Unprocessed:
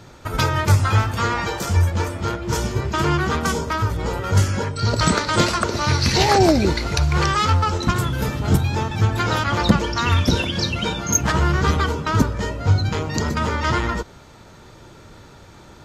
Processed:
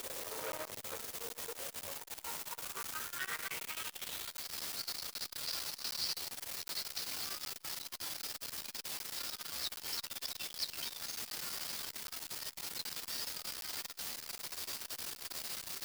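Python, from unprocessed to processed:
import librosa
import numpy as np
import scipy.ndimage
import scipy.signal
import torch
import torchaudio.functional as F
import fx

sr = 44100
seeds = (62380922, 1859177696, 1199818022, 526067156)

y = fx.delta_mod(x, sr, bps=32000, step_db=-24.5)
y = fx.low_shelf(y, sr, hz=100.0, db=-11.5)
y = fx.over_compress(y, sr, threshold_db=-22.0, ratio=-1.0)
y = fx.filter_sweep_bandpass(y, sr, from_hz=500.0, to_hz=4900.0, start_s=1.53, end_s=4.57, q=4.2)
y = fx.chopper(y, sr, hz=1.1, depth_pct=65, duty_pct=10, at=(0.78, 3.16), fade=0.02)
y = fx.quant_dither(y, sr, seeds[0], bits=6, dither='triangular')
y = fx.doubler(y, sr, ms=13.0, db=-6.0)
y = fx.buffer_crackle(y, sr, first_s=0.52, period_s=0.77, block=512, kind='zero')
y = fx.transformer_sat(y, sr, knee_hz=2900.0)
y = F.gain(torch.from_numpy(y), -5.5).numpy()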